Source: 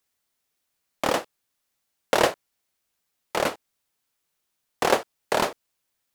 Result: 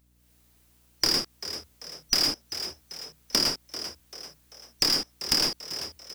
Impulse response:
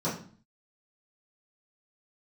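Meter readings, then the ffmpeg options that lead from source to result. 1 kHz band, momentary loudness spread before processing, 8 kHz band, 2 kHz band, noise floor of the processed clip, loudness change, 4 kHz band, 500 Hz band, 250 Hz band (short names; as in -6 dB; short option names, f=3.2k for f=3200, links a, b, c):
-13.5 dB, 8 LU, +5.5 dB, -7.0 dB, -63 dBFS, -0.5 dB, +10.0 dB, -13.5 dB, -3.5 dB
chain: -filter_complex "[0:a]afftfilt=real='real(if(lt(b,272),68*(eq(floor(b/68),0)*1+eq(floor(b/68),1)*2+eq(floor(b/68),2)*3+eq(floor(b/68),3)*0)+mod(b,68),b),0)':imag='imag(if(lt(b,272),68*(eq(floor(b/68),0)*1+eq(floor(b/68),1)*2+eq(floor(b/68),2)*3+eq(floor(b/68),3)*0)+mod(b,68),b),0)':win_size=2048:overlap=0.75,highshelf=f=9.5k:g=4,acrossover=split=1300[a][b];[a]aeval=exprs='(mod(25.1*val(0)+1,2)-1)/25.1':c=same[c];[c][b]amix=inputs=2:normalize=0,equalizer=f=310:t=o:w=1.3:g=8.5,asoftclip=type=tanh:threshold=-13.5dB,dynaudnorm=f=170:g=3:m=10.5dB,alimiter=limit=-8dB:level=0:latency=1:release=32,aeval=exprs='0.398*(cos(1*acos(clip(val(0)/0.398,-1,1)))-cos(1*PI/2))+0.00316*(cos(5*acos(clip(val(0)/0.398,-1,1)))-cos(5*PI/2))+0.01*(cos(8*acos(clip(val(0)/0.398,-1,1)))-cos(8*PI/2))':c=same,asplit=5[d][e][f][g][h];[e]adelay=390,afreqshift=76,volume=-18dB[i];[f]adelay=780,afreqshift=152,volume=-24.7dB[j];[g]adelay=1170,afreqshift=228,volume=-31.5dB[k];[h]adelay=1560,afreqshift=304,volume=-38.2dB[l];[d][i][j][k][l]amix=inputs=5:normalize=0,acompressor=threshold=-20dB:ratio=16,aeval=exprs='val(0)+0.000631*(sin(2*PI*60*n/s)+sin(2*PI*2*60*n/s)/2+sin(2*PI*3*60*n/s)/3+sin(2*PI*4*60*n/s)/4+sin(2*PI*5*60*n/s)/5)':c=same"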